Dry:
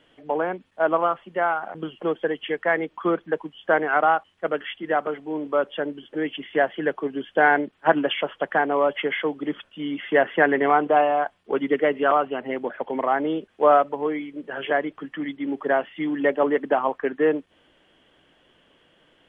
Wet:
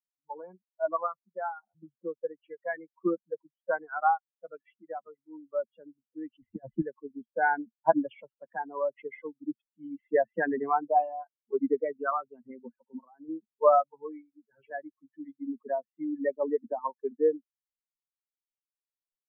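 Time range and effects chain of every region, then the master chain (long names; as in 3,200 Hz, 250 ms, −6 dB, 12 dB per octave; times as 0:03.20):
0:06.42–0:06.82: bass and treble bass +8 dB, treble −13 dB + compressor whose output falls as the input rises −22 dBFS, ratio −0.5
0:12.80–0:13.29: Chebyshev band-pass filter 120–1,900 Hz + downward compressor 4 to 1, threshold −25 dBFS
whole clip: spectral dynamics exaggerated over time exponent 3; dynamic equaliser 230 Hz, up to +4 dB, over −51 dBFS, Q 3.9; low-pass filter 1,400 Hz 24 dB per octave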